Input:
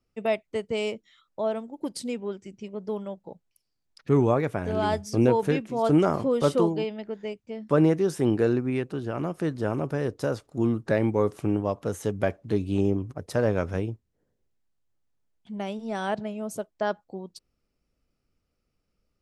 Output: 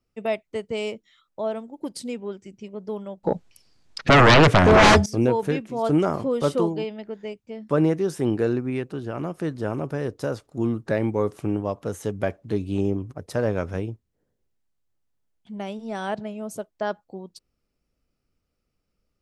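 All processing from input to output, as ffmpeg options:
ffmpeg -i in.wav -filter_complex "[0:a]asettb=1/sr,asplit=3[link_01][link_02][link_03];[link_01]atrim=end=3.234[link_04];[link_02]atrim=start=3.23:end=5.06,asetpts=PTS-STARTPTS,afade=type=in:duration=0.004:curve=qsin,afade=type=out:start_time=1.826:duration=0.004:curve=qsin,lowpass=7200,aeval=exprs='0.335*sin(PI/2*6.31*val(0)/0.335)':channel_layout=same[link_05];[link_03]atrim=start=5.056[link_06];[link_04][link_05]acrossfade=duration=0.004:curve1=hsin:curve2=qsin[link_07];[link_07][link_06]acrossfade=duration=0.004:curve1=qsin:curve2=hsin" out.wav

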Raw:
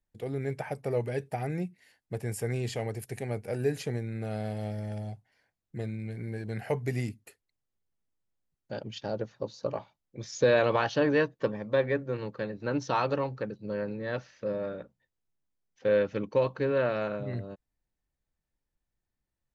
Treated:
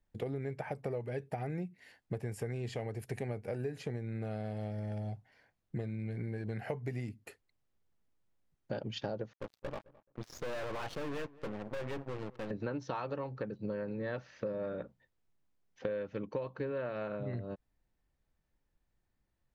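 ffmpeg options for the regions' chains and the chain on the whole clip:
ffmpeg -i in.wav -filter_complex "[0:a]asettb=1/sr,asplit=3[link_01][link_02][link_03];[link_01]atrim=end=9.334[link_04];[link_02]atrim=start=9.33:end=12.51,asetpts=PTS-STARTPTS,afade=type=in:duration=0.004:curve=qsin,afade=type=out:start_time=3.176:duration=0.004:curve=qsin,aeval=exprs='sgn(val(0))*max(abs(val(0))-0.00708,0)':channel_layout=same,aeval=exprs='(tanh(112*val(0)+0.7)-tanh(0.7))/112':channel_layout=same,asplit=2[link_05][link_06];[link_06]adelay=214,lowpass=frequency=1700:poles=1,volume=-21.5dB,asplit=2[link_07][link_08];[link_08]adelay=214,lowpass=frequency=1700:poles=1,volume=0.19[link_09];[link_05][link_07][link_09]amix=inputs=3:normalize=0,atrim=end_sample=140238[link_10];[link_03]atrim=start=12.506[link_11];[link_04][link_10]acrossfade=duration=0.004:curve1=hsin:curve2=qsin[link_12];[link_12][link_11]acrossfade=duration=0.004:curve1=qsin:curve2=hsin,highshelf=frequency=4700:gain=-11,acompressor=threshold=-40dB:ratio=12,volume=6dB" out.wav

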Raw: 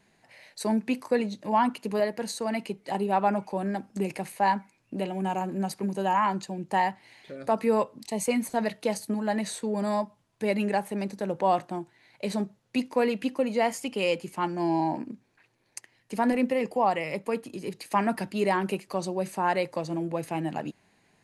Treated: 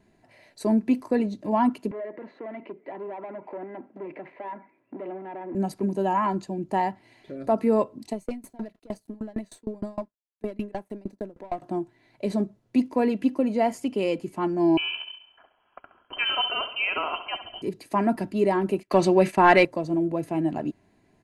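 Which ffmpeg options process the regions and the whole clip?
ffmpeg -i in.wav -filter_complex "[0:a]asettb=1/sr,asplit=3[link_01][link_02][link_03];[link_01]atrim=end=1.914[link_04];[link_02]atrim=start=1.91:end=5.55,asetpts=PTS-STARTPTS,afade=type=in:duration=0.004:curve=qsin,afade=type=out:start_time=3.636:duration=0.004:curve=qsin,acompressor=threshold=-35dB:ratio=3:attack=3.2:release=140:knee=1:detection=peak,asoftclip=type=hard:threshold=-37.5dB,highpass=frequency=180:width=0.5412,highpass=frequency=180:width=1.3066,equalizer=frequency=200:width_type=q:width=4:gain=-8,equalizer=frequency=380:width_type=q:width=4:gain=3,equalizer=frequency=560:width_type=q:width=4:gain=6,equalizer=frequency=990:width_type=q:width=4:gain=5,equalizer=frequency=2000:width_type=q:width=4:gain=8,lowpass=frequency=2600:width=0.5412,lowpass=frequency=2600:width=1.3066[link_05];[link_03]atrim=start=5.546[link_06];[link_04][link_05]acrossfade=duration=0.004:curve1=hsin:curve2=qsin[link_07];[link_07][link_06]acrossfade=duration=0.004:curve1=qsin:curve2=hsin,asettb=1/sr,asplit=3[link_08][link_09][link_10];[link_08]atrim=end=8.134[link_11];[link_09]atrim=start=8.13:end=11.62,asetpts=PTS-STARTPTS,afade=type=in:duration=0.004:curve=qsin,afade=type=out:start_time=3.486:duration=0.004:curve=qsin,aeval=exprs='(tanh(12.6*val(0)+0.2)-tanh(0.2))/12.6':channel_layout=same,aeval=exprs='sgn(val(0))*max(abs(val(0))-0.00178,0)':channel_layout=same,aeval=exprs='val(0)*pow(10,-28*if(lt(mod(6.5*n/s,1),2*abs(6.5)/1000),1-mod(6.5*n/s,1)/(2*abs(6.5)/1000),(mod(6.5*n/s,1)-2*abs(6.5)/1000)/(1-2*abs(6.5)/1000))/20)':channel_layout=same[link_12];[link_10]atrim=start=11.616[link_13];[link_11][link_12]acrossfade=duration=0.004:curve1=hsin:curve2=qsin[link_14];[link_14][link_13]acrossfade=duration=0.004:curve1=qsin:curve2=hsin,asettb=1/sr,asplit=3[link_15][link_16][link_17];[link_15]atrim=end=14.774[link_18];[link_16]atrim=start=14.77:end=17.62,asetpts=PTS-STARTPTS,afade=type=in:duration=0.004:curve=qsin,afade=type=out:start_time=2.846:duration=0.004:curve=qsin,equalizer=frequency=2500:width=0.8:gain=10,aecho=1:1:68|136|204|272|340|408:0.282|0.147|0.0762|0.0396|0.0206|0.0107,atrim=end_sample=125685,lowpass=frequency=2800:width_type=q:width=0.5098,lowpass=frequency=2800:width_type=q:width=0.6013,lowpass=frequency=2800:width_type=q:width=0.9,lowpass=frequency=2800:width_type=q:width=2.563,afreqshift=-3300[link_19];[link_17]atrim=start=17.616[link_20];[link_18][link_19]acrossfade=duration=0.004:curve1=hsin:curve2=qsin[link_21];[link_21][link_20]acrossfade=duration=0.004:curve1=qsin:curve2=hsin,asettb=1/sr,asplit=3[link_22][link_23][link_24];[link_22]atrim=end=18.834[link_25];[link_23]atrim=start=18.83:end=19.65,asetpts=PTS-STARTPTS,afade=type=in:duration=0.004:curve=qsin,afade=type=out:start_time=0.816:duration=0.004:curve=qsin,equalizer=frequency=2300:width_type=o:width=1.8:gain=12.5,acontrast=71,agate=range=-28dB:threshold=-33dB:ratio=16:release=100:detection=peak[link_26];[link_24]atrim=start=19.646[link_27];[link_25][link_26]acrossfade=duration=0.004:curve1=hsin:curve2=qsin[link_28];[link_28][link_27]acrossfade=duration=0.004:curve1=qsin:curve2=hsin,tiltshelf=frequency=750:gain=7,aecho=1:1:3:0.39" out.wav

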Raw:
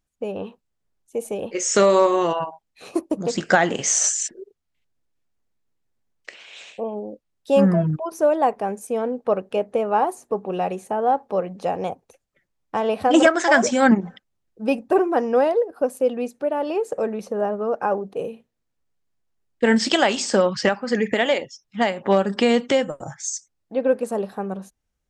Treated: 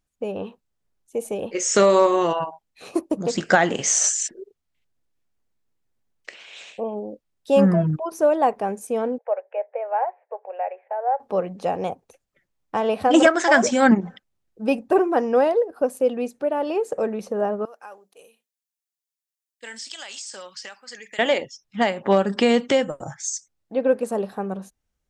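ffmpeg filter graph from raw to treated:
ffmpeg -i in.wav -filter_complex "[0:a]asettb=1/sr,asplit=3[link_01][link_02][link_03];[link_01]atrim=end=9.184[link_04];[link_02]atrim=start=9.18:end=11.2,asetpts=PTS-STARTPTS,afade=type=in:duration=0.004:curve=qsin,afade=type=out:start_time=2.016:duration=0.004:curve=qsin,asuperpass=centerf=1100:order=12:qfactor=0.62,equalizer=frequency=1200:width_type=o:width=0.5:gain=-15[link_05];[link_03]atrim=start=11.196[link_06];[link_04][link_05]acrossfade=duration=0.004:curve1=hsin:curve2=qsin[link_07];[link_07][link_06]acrossfade=duration=0.004:curve1=qsin:curve2=hsin,asettb=1/sr,asplit=3[link_08][link_09][link_10];[link_08]atrim=end=17.654[link_11];[link_09]atrim=start=17.65:end=21.19,asetpts=PTS-STARTPTS,afade=type=in:duration=0.004:curve=qsin,afade=type=out:start_time=3.536:duration=0.004:curve=qsin,aderivative,acompressor=threshold=-32dB:ratio=6:attack=3.2:release=140:knee=1:detection=peak[link_12];[link_10]atrim=start=21.186[link_13];[link_11][link_12]acrossfade=duration=0.004:curve1=hsin:curve2=qsin[link_14];[link_14][link_13]acrossfade=duration=0.004:curve1=qsin:curve2=hsin" out.wav

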